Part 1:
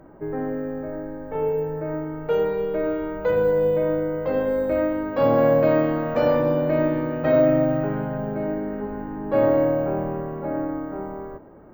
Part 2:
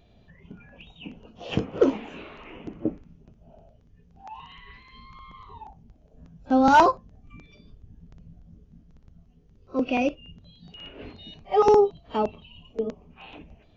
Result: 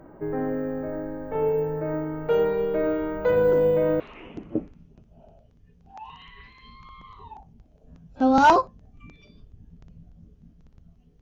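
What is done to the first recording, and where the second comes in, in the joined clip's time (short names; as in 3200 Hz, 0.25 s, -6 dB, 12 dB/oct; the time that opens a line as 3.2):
part 1
3.47 add part 2 from 1.77 s 0.53 s -14.5 dB
4 switch to part 2 from 2.3 s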